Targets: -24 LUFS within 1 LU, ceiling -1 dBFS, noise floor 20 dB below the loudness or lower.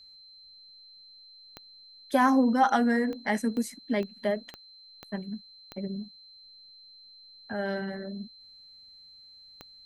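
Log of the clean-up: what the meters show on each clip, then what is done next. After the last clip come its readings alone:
clicks 8; steady tone 4100 Hz; tone level -50 dBFS; loudness -28.5 LUFS; peak -11.0 dBFS; loudness target -24.0 LUFS
-> de-click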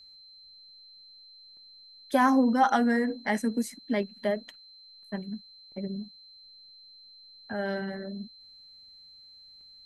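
clicks 0; steady tone 4100 Hz; tone level -50 dBFS
-> notch 4100 Hz, Q 30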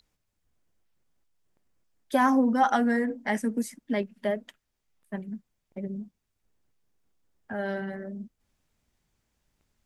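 steady tone none; loudness -28.0 LUFS; peak -11.0 dBFS; loudness target -24.0 LUFS
-> gain +4 dB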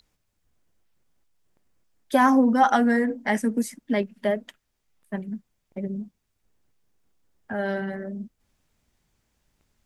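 loudness -24.0 LUFS; peak -7.0 dBFS; noise floor -76 dBFS

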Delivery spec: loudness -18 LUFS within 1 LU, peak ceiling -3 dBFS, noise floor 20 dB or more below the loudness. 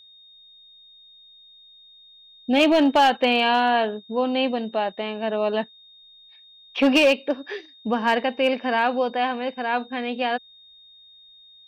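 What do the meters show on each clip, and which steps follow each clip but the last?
clipped 0.4%; flat tops at -11.5 dBFS; steady tone 3700 Hz; tone level -48 dBFS; loudness -22.0 LUFS; peak -11.5 dBFS; loudness target -18.0 LUFS
-> clip repair -11.5 dBFS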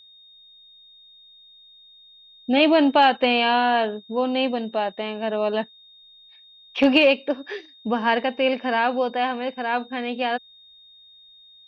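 clipped 0.0%; steady tone 3700 Hz; tone level -48 dBFS
-> notch 3700 Hz, Q 30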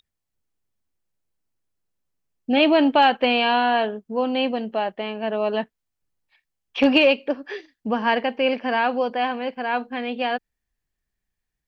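steady tone none; loudness -21.5 LUFS; peak -4.0 dBFS; loudness target -18.0 LUFS
-> gain +3.5 dB; limiter -3 dBFS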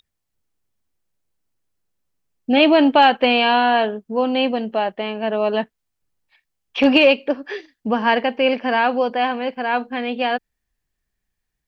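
loudness -18.0 LUFS; peak -3.0 dBFS; noise floor -79 dBFS

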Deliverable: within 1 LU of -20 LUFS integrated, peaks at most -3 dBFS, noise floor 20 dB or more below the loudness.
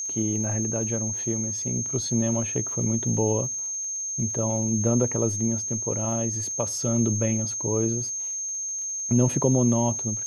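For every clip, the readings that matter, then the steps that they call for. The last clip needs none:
ticks 42/s; steady tone 6400 Hz; tone level -28 dBFS; loudness -24.5 LUFS; peak -8.5 dBFS; loudness target -20.0 LUFS
-> de-click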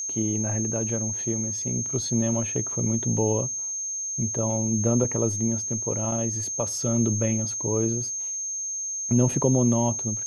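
ticks 0/s; steady tone 6400 Hz; tone level -28 dBFS
-> notch 6400 Hz, Q 30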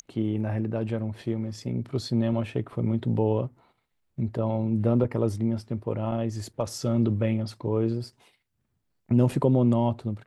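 steady tone none; loudness -27.0 LUFS; peak -9.0 dBFS; loudness target -20.0 LUFS
-> gain +7 dB; limiter -3 dBFS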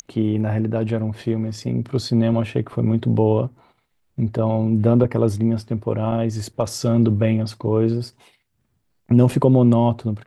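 loudness -20.0 LUFS; peak -3.0 dBFS; noise floor -68 dBFS

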